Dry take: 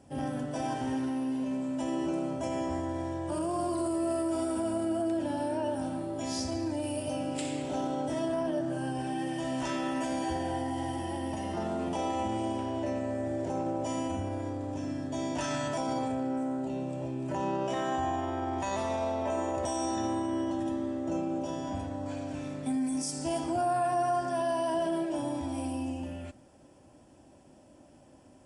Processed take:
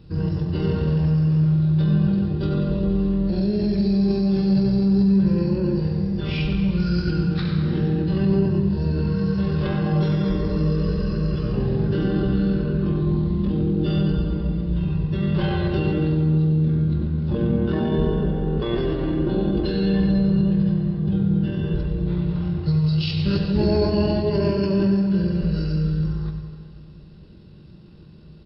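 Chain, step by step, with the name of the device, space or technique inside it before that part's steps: monster voice (pitch shift -9 st; formant shift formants -3 st; bass shelf 190 Hz +8 dB; delay 97 ms -10 dB; reverberation RT60 2.3 s, pre-delay 99 ms, DRR 8.5 dB); trim +6.5 dB

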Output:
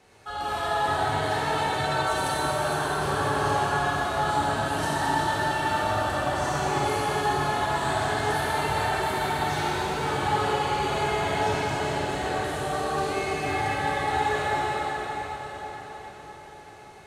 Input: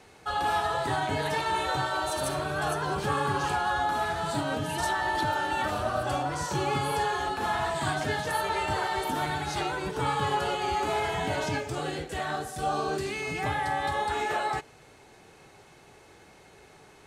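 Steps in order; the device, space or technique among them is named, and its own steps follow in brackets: cathedral (reverberation RT60 5.8 s, pre-delay 19 ms, DRR -8 dB); trim -5.5 dB

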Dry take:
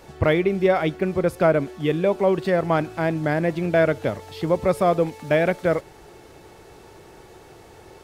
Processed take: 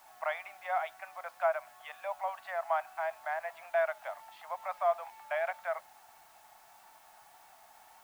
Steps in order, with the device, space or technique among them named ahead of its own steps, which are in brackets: steep high-pass 670 Hz 72 dB/octave; cassette deck with a dirty head (tape spacing loss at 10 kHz 44 dB; wow and flutter 25 cents; white noise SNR 27 dB); trim -2.5 dB

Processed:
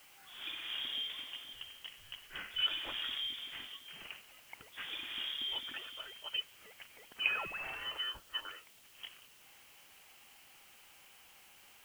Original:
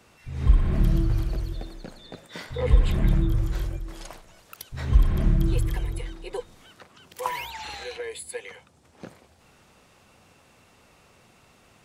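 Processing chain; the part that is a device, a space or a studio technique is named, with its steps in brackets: scrambled radio voice (band-pass 360–3000 Hz; frequency inversion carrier 3.5 kHz; white noise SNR 19 dB); trim -3.5 dB

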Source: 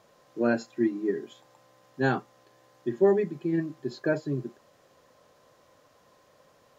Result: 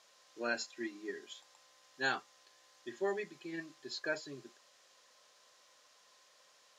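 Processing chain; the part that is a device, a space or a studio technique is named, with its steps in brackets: piezo pickup straight into a mixer (low-pass 5.7 kHz 12 dB/octave; differentiator); trim +10 dB

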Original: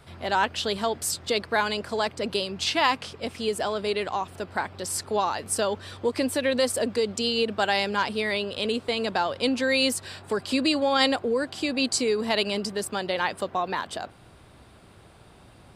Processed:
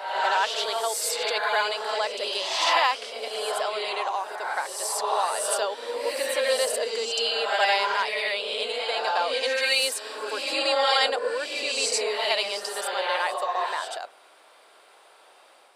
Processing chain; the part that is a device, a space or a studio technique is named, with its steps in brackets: ghost voice (reverse; reverberation RT60 1.1 s, pre-delay 62 ms, DRR -0.5 dB; reverse; high-pass 510 Hz 24 dB/octave); trim -1 dB

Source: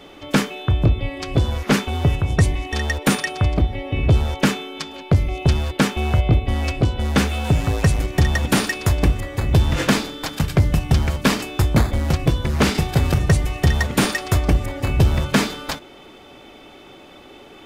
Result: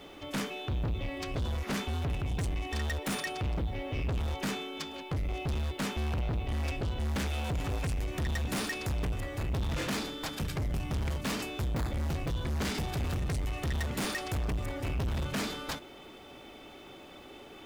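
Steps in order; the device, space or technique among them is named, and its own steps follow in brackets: open-reel tape (saturation -24 dBFS, distortion -5 dB; peaking EQ 62 Hz +2 dB; white noise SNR 39 dB); trim -6 dB

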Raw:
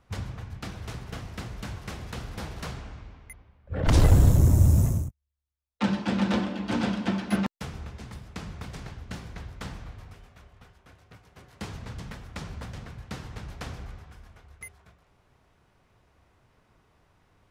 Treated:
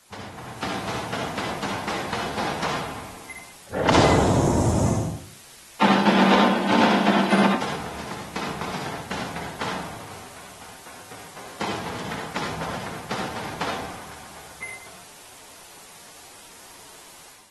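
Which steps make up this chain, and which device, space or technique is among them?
filmed off a television (band-pass 250–6700 Hz; peaking EQ 890 Hz +6 dB 0.48 oct; reverberation RT60 0.45 s, pre-delay 57 ms, DRR 1 dB; white noise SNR 20 dB; level rider gain up to 10 dB; trim -1.5 dB; AAC 32 kbps 48 kHz)

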